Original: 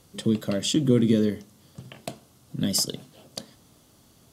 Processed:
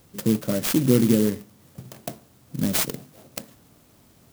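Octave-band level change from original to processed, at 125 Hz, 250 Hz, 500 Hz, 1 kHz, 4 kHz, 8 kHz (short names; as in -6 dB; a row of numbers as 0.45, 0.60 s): +2.0, +2.0, +1.5, +6.0, -3.5, +0.5 dB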